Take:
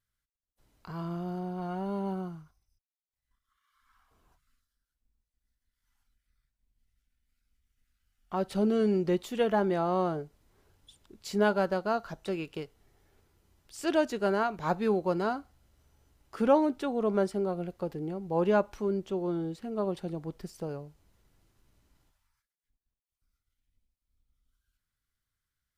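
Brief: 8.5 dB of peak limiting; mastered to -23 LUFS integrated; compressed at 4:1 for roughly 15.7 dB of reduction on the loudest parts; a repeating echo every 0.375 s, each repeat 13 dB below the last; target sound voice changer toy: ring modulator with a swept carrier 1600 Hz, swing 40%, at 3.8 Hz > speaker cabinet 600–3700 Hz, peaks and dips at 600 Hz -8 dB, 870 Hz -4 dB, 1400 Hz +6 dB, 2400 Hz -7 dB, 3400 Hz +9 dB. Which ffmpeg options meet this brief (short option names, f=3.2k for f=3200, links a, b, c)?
-af "acompressor=threshold=-37dB:ratio=4,alimiter=level_in=11dB:limit=-24dB:level=0:latency=1,volume=-11dB,aecho=1:1:375|750|1125:0.224|0.0493|0.0108,aeval=exprs='val(0)*sin(2*PI*1600*n/s+1600*0.4/3.8*sin(2*PI*3.8*n/s))':c=same,highpass=600,equalizer=f=600:t=q:w=4:g=-8,equalizer=f=870:t=q:w=4:g=-4,equalizer=f=1.4k:t=q:w=4:g=6,equalizer=f=2.4k:t=q:w=4:g=-7,equalizer=f=3.4k:t=q:w=4:g=9,lowpass=f=3.7k:w=0.5412,lowpass=f=3.7k:w=1.3066,volume=21.5dB"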